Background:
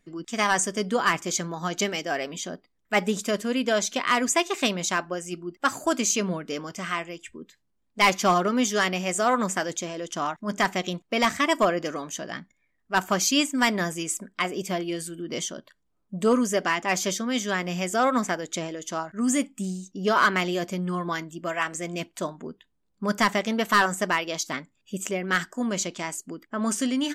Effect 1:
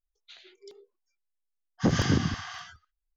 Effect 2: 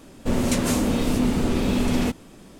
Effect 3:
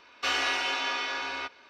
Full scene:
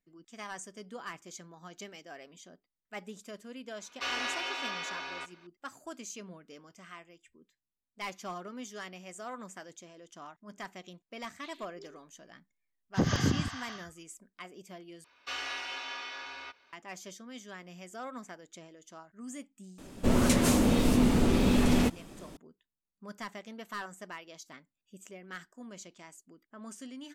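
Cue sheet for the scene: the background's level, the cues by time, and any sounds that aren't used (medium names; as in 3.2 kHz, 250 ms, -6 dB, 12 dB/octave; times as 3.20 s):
background -19.5 dB
3.78 s: add 3 -6.5 dB
11.14 s: add 1 -3.5 dB
15.04 s: replace with 3 -9 dB + peaking EQ 280 Hz -4 dB 2.9 oct
19.78 s: add 2 -2.5 dB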